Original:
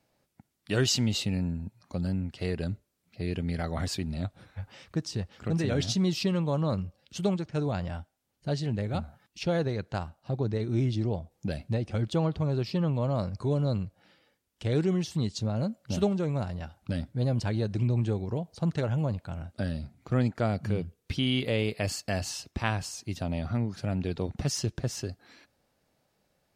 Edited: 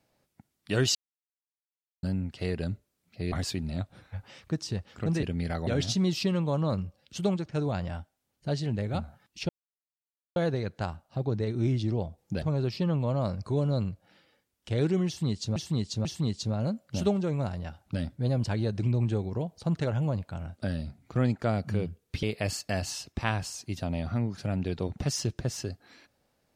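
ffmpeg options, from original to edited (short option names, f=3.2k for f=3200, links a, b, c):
-filter_complex "[0:a]asplit=11[a][b][c][d][e][f][g][h][i][j][k];[a]atrim=end=0.95,asetpts=PTS-STARTPTS,afade=t=out:st=0.946:d=0.004:c=hsin[l];[b]atrim=start=0.95:end=2.03,asetpts=PTS-STARTPTS,volume=0[m];[c]atrim=start=2.03:end=3.322,asetpts=PTS-STARTPTS,afade=t=in:d=0.004:c=hsin[n];[d]atrim=start=3.758:end=5.672[o];[e]atrim=start=3.318:end=3.762[p];[f]atrim=start=5.668:end=9.49,asetpts=PTS-STARTPTS,afade=t=out:st=3.818:d=0.004:c=hsin,apad=pad_dur=0.87[q];[g]atrim=start=9.49:end=11.552,asetpts=PTS-STARTPTS,afade=t=in:d=0.004:c=hsin[r];[h]atrim=start=12.358:end=15.502[s];[i]atrim=start=15.008:end=15.502[t];[j]atrim=start=15.008:end=21.192[u];[k]atrim=start=21.618[v];[l][m][n]concat=n=3:v=0:a=1[w];[w][o]acrossfade=d=0.004:c1=hsin:c2=hsin[x];[x][p]acrossfade=d=0.004:c1=hsin:c2=hsin[y];[q][r]concat=n=2:v=0:a=1[z];[y][z]acrossfade=d=0.004:c1=hsin:c2=hsin[aa];[aa][s]acrossfade=d=0.004:c1=hsin:c2=hsin[ab];[ab][t]acrossfade=d=0.004:c1=hsin:c2=hsin[ac];[ac][u]acrossfade=d=0.004:c1=hsin:c2=hsin[ad];[ad][v]acrossfade=d=0.004:c1=hsin:c2=hsin"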